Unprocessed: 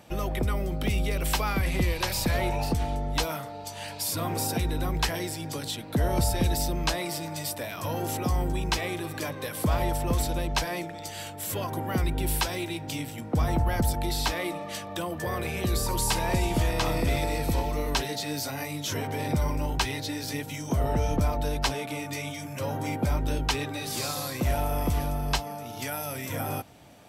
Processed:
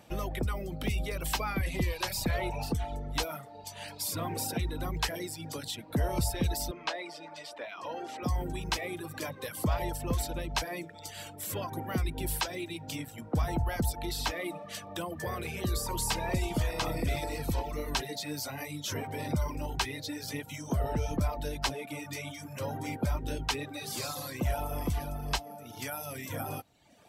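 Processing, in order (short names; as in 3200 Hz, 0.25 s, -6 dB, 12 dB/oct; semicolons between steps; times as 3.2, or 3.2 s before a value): reverb removal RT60 0.85 s; 6.71–8.23 BPF 400–3800 Hz; gain -3.5 dB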